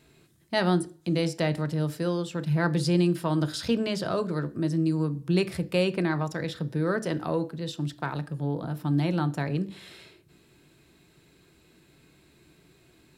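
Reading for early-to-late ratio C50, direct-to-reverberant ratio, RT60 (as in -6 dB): 19.0 dB, 9.0 dB, 0.45 s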